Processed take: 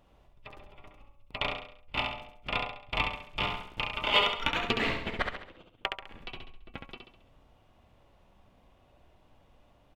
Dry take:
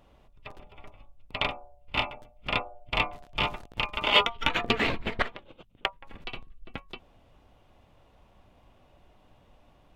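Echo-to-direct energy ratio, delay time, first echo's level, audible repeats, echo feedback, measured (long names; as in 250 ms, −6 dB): −4.0 dB, 68 ms, −5.0 dB, 5, 44%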